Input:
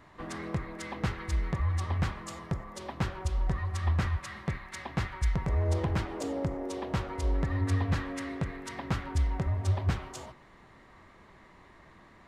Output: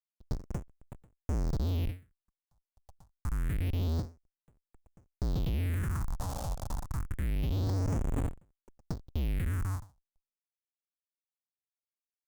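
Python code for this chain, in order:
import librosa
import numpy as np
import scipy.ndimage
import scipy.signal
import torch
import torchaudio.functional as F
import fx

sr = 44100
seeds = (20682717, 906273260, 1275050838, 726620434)

y = fx.schmitt(x, sr, flips_db=-30.5)
y = fx.phaser_stages(y, sr, stages=4, low_hz=330.0, high_hz=4600.0, hz=0.27, feedback_pct=45)
y = fx.end_taper(y, sr, db_per_s=200.0)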